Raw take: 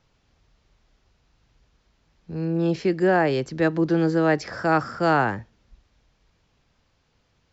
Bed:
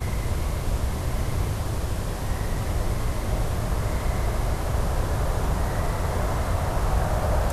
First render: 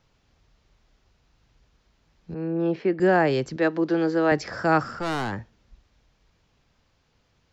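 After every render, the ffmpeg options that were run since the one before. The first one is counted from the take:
-filter_complex "[0:a]asettb=1/sr,asplit=3[a][b][c];[a]atrim=end=2.344[d];[b]atrim=start=2.34:end=3,asetpts=PTS-STARTPTS,afade=t=in:d=0.004:c=qsin,afade=t=out:st=0.656:d=0.004:c=qsin,highpass=220,lowpass=2.2k[e];[c]atrim=start=2.996[f];[d][e]acrossfade=d=0.004:c1=hsin:c2=qsin[g];[g][f]acrossfade=d=0.004:c1=qsin:c2=hsin,asettb=1/sr,asplit=3[h][i][j];[h]atrim=end=3.564[k];[i]atrim=start=3.56:end=4.32,asetpts=PTS-STARTPTS,afade=t=in:d=0.004:c=qsin,afade=t=out:st=0.756:d=0.004:c=qsin,highpass=270,lowpass=5.7k[l];[j]atrim=start=4.316[m];[k][l]acrossfade=d=0.004:c1=hsin:c2=qsin[n];[n][m]acrossfade=d=0.004:c1=qsin:c2=hsin,asettb=1/sr,asplit=3[o][p][q];[o]atrim=end=4.834[r];[p]atrim=start=4.83:end=5.33,asetpts=PTS-STARTPTS,afade=t=in:d=0.004:c=qsin,afade=t=out:st=0.496:d=0.004:c=qsin,aeval=exprs='(tanh(15.8*val(0)+0.25)-tanh(0.25))/15.8':c=same[s];[q]atrim=start=5.326[t];[r][s]acrossfade=d=0.004:c1=hsin:c2=qsin[u];[u][t]acrossfade=d=0.004:c1=qsin:c2=hsin"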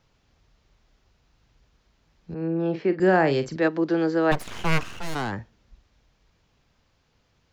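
-filter_complex "[0:a]asettb=1/sr,asplit=3[a][b][c];[a]atrim=end=2.374[d];[b]atrim=start=2.37:end=3.68,asetpts=PTS-STARTPTS,afade=t=in:d=0.004:c=qsin,afade=t=out:st=1.306:d=0.004:c=qsin,asplit=2[e][f];[f]adelay=43,volume=-11.5dB[g];[e][g]amix=inputs=2:normalize=0,atrim=end_sample=57771[h];[c]atrim=start=3.676[i];[d][h]acrossfade=d=0.004:c1=hsin:c2=qsin[j];[j][i]acrossfade=d=0.004:c1=qsin:c2=hsin,asplit=3[k][l][m];[k]afade=t=out:st=4.31:d=0.02[n];[l]aeval=exprs='abs(val(0))':c=same,afade=t=in:st=4.31:d=0.02,afade=t=out:st=5.14:d=0.02[o];[m]afade=t=in:st=5.14:d=0.02[p];[n][o][p]amix=inputs=3:normalize=0"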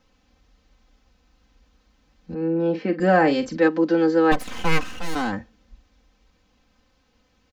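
-af "equalizer=f=260:t=o:w=1.7:g=2.5,aecho=1:1:3.9:0.85"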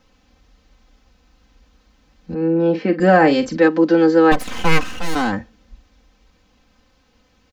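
-af "volume=5.5dB,alimiter=limit=-3dB:level=0:latency=1"

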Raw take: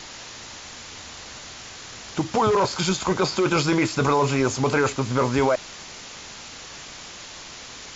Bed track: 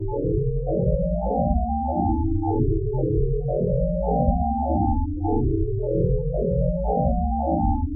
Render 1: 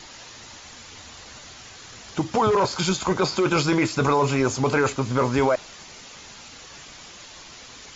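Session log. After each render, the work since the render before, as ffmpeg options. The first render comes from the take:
-af "afftdn=nr=6:nf=-40"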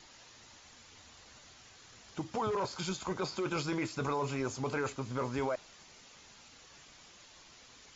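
-af "volume=-13.5dB"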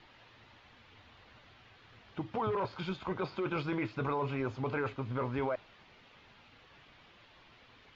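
-af "lowpass=f=3.4k:w=0.5412,lowpass=f=3.4k:w=1.3066,equalizer=f=110:t=o:w=0.3:g=6"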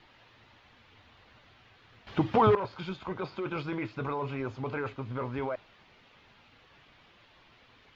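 -filter_complex "[0:a]asplit=3[a][b][c];[a]atrim=end=2.072[d];[b]atrim=start=2.068:end=2.552,asetpts=PTS-STARTPTS,volume=11.5dB[e];[c]atrim=start=2.548[f];[d][e]acrossfade=d=0.004:c1=hsin:c2=hsin[g];[g][f]acrossfade=d=0.004:c1=hsin:c2=hsin"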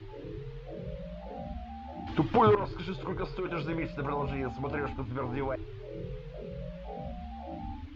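-filter_complex "[1:a]volume=-18.5dB[a];[0:a][a]amix=inputs=2:normalize=0"

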